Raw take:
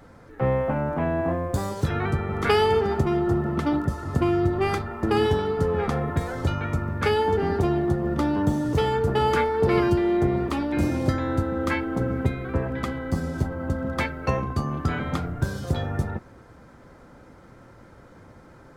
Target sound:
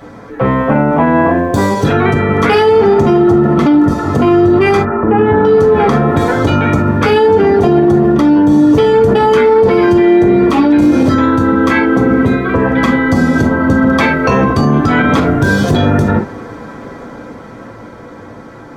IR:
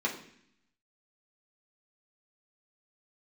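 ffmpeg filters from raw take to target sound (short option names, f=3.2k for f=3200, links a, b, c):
-filter_complex "[0:a]asettb=1/sr,asplit=3[a][b][c];[a]atrim=end=4.774[d];[b]atrim=start=4.77:end=5.45,asetpts=PTS-STARTPTS,afade=t=in:d=0.004:c=qsin,afade=t=out:st=0.676:d=0.004:c=qsin,lowpass=f=2k:w=0.5412,lowpass=f=2k:w=1.3066[e];[c]atrim=start=5.446[f];[d][e]acrossfade=d=0.004:c1=hsin:c2=qsin[g];[g][f]acrossfade=d=0.004:c1=qsin:c2=hsin[h];[1:a]atrim=start_sample=2205,atrim=end_sample=3528[i];[h][i]afir=irnorm=-1:irlink=0,dynaudnorm=f=330:g=13:m=11.5dB,alimiter=level_in=11dB:limit=-1dB:release=50:level=0:latency=1,volume=-1dB"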